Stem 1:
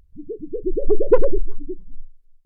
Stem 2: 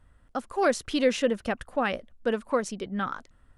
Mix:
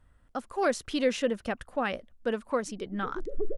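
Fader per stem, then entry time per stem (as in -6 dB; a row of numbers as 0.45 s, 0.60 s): -14.0 dB, -3.0 dB; 2.50 s, 0.00 s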